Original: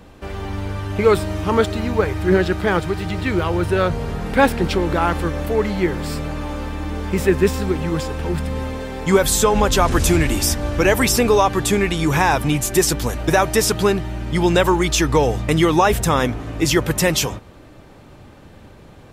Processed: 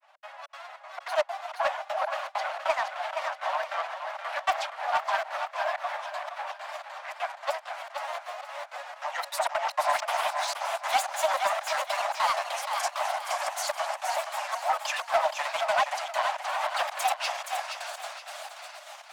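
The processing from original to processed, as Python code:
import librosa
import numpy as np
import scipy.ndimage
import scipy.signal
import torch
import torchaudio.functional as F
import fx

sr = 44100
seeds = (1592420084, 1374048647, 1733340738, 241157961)

p1 = np.minimum(x, 2.0 * 10.0 ** (-12.5 / 20.0) - x)
p2 = fx.high_shelf(p1, sr, hz=5800.0, db=-11.5)
p3 = fx.echo_diffused(p2, sr, ms=708, feedback_pct=52, wet_db=-6.0)
p4 = fx.granulator(p3, sr, seeds[0], grain_ms=100.0, per_s=20.0, spray_ms=100.0, spread_st=7)
p5 = fx.step_gate(p4, sr, bpm=198, pattern='xx.xxx.xxx.xx.', floor_db=-60.0, edge_ms=4.5)
p6 = scipy.signal.sosfilt(scipy.signal.butter(16, 600.0, 'highpass', fs=sr, output='sos'), p5)
p7 = p6 + fx.echo_feedback(p6, sr, ms=472, feedback_pct=37, wet_db=-7.0, dry=0)
p8 = 10.0 ** (-11.5 / 20.0) * np.tanh(p7 / 10.0 ** (-11.5 / 20.0))
p9 = fx.dynamic_eq(p8, sr, hz=770.0, q=1.6, threshold_db=-34.0, ratio=4.0, max_db=6)
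y = p9 * 10.0 ** (-5.5 / 20.0)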